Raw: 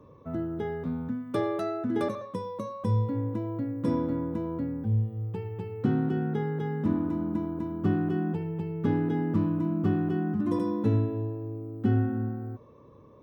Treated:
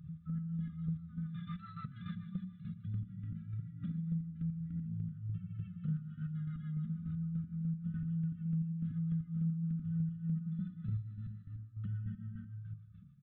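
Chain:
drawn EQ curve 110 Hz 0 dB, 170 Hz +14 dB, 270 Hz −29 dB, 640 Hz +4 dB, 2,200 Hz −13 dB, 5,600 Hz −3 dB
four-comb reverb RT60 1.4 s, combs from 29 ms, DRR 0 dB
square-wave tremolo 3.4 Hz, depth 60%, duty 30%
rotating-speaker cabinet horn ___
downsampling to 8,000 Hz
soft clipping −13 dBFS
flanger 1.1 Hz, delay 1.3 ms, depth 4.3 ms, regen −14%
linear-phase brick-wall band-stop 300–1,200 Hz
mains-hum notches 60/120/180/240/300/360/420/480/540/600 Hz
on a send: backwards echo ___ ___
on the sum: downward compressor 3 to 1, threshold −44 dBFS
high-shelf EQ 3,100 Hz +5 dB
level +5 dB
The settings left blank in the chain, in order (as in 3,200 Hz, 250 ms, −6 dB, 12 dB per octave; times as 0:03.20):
7 Hz, 796 ms, −21.5 dB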